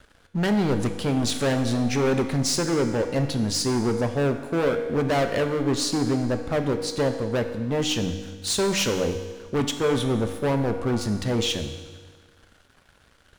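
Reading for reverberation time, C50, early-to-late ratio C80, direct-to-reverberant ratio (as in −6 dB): 1.5 s, 8.0 dB, 9.5 dB, 6.0 dB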